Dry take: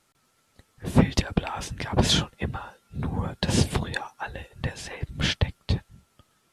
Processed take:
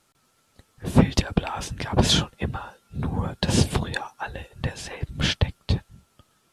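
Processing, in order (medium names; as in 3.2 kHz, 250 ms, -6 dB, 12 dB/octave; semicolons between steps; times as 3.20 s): peaking EQ 2 kHz -3 dB 0.37 oct; trim +2 dB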